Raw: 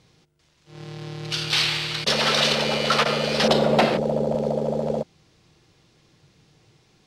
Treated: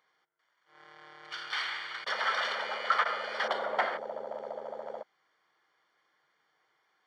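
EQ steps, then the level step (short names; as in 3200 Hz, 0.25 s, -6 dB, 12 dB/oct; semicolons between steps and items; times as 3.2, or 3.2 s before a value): polynomial smoothing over 41 samples; HPF 1300 Hz 12 dB/oct; 0.0 dB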